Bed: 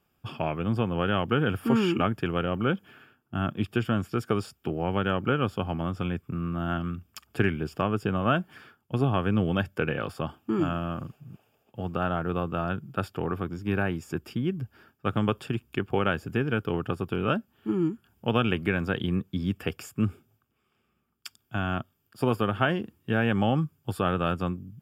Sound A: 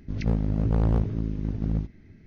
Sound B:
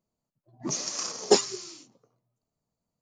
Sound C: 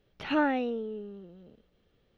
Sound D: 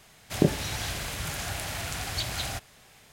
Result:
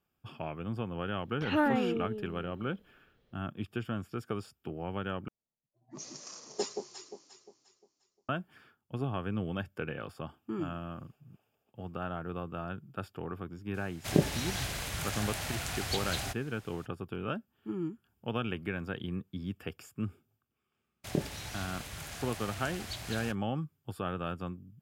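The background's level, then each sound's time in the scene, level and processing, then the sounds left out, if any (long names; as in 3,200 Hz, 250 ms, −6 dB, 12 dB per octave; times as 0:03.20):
bed −9.5 dB
0:01.21: mix in C −1.5 dB
0:05.28: overwrite with B −14.5 dB + delay that swaps between a low-pass and a high-pass 176 ms, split 940 Hz, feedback 59%, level −4 dB
0:13.74: mix in D −3 dB
0:20.73: mix in D −9.5 dB + noise gate −44 dBFS, range −30 dB
not used: A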